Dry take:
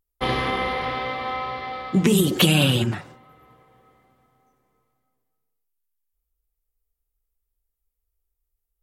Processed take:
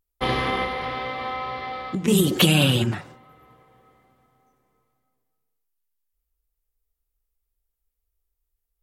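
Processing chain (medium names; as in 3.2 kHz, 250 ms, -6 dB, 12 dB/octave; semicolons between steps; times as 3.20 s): 0.64–2.08 s: compression 6:1, threshold -25 dBFS, peak gain reduction 11 dB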